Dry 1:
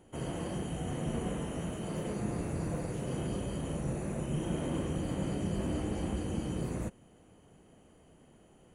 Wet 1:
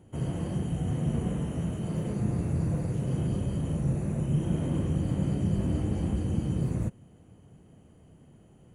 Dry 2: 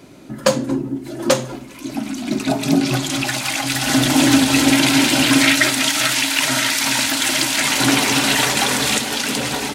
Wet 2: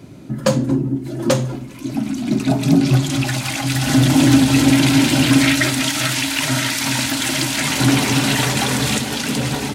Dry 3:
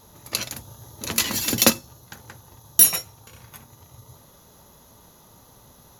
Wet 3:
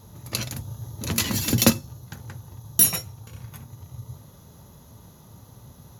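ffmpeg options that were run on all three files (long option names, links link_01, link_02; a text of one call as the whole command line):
ffmpeg -i in.wav -filter_complex "[0:a]equalizer=frequency=110:width=0.59:gain=13,asplit=2[link_01][link_02];[link_02]asoftclip=type=tanh:threshold=-8dB,volume=-6dB[link_03];[link_01][link_03]amix=inputs=2:normalize=0,volume=-6dB" out.wav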